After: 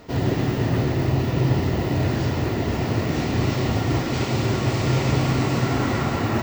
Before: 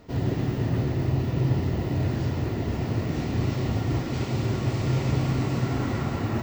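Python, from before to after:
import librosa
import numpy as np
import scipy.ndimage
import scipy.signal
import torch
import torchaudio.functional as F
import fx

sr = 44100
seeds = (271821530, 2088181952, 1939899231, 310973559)

y = fx.low_shelf(x, sr, hz=310.0, db=-6.5)
y = y * 10.0 ** (8.5 / 20.0)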